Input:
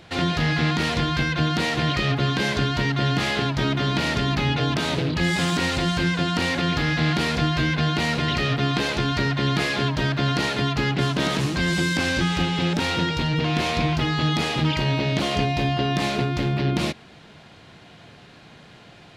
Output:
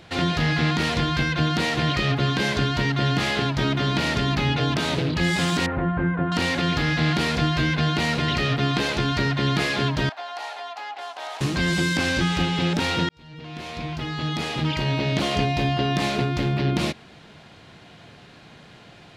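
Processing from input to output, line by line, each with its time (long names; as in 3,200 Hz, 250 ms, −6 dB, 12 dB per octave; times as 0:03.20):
0:05.66–0:06.32: low-pass filter 1,600 Hz 24 dB per octave
0:10.09–0:11.41: four-pole ladder high-pass 710 Hz, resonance 75%
0:13.09–0:15.20: fade in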